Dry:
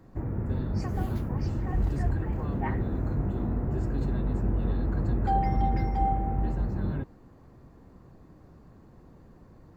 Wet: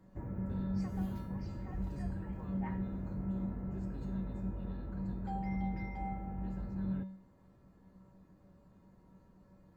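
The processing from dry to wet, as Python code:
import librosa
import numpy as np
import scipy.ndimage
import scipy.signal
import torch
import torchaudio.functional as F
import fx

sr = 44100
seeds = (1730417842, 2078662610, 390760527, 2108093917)

y = fx.rider(x, sr, range_db=10, speed_s=2.0)
y = fx.comb_fb(y, sr, f0_hz=190.0, decay_s=0.57, harmonics='odd', damping=0.0, mix_pct=90)
y = y * librosa.db_to_amplitude(4.5)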